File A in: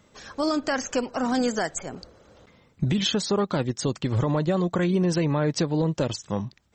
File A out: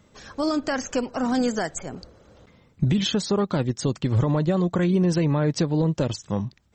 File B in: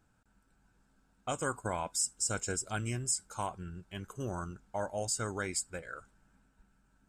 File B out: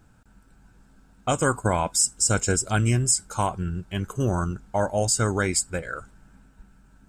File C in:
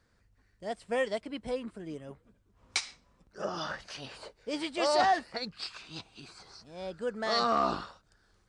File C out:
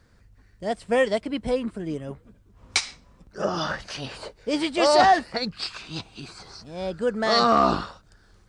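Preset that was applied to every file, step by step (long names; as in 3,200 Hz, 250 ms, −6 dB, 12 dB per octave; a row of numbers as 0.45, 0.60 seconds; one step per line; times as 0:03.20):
low-shelf EQ 280 Hz +5.5 dB
loudness normalisation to −24 LKFS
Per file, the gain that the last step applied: −1.0, +10.5, +8.0 decibels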